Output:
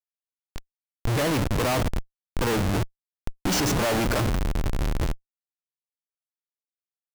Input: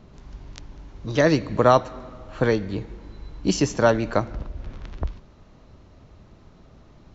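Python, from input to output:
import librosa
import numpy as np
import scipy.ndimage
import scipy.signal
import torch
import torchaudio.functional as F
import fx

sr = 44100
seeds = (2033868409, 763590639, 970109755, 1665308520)

y = fx.noise_reduce_blind(x, sr, reduce_db=7)
y = fx.rider(y, sr, range_db=4, speed_s=2.0)
y = fx.schmitt(y, sr, flips_db=-33.0)
y = F.gain(torch.from_numpy(y), 3.5).numpy()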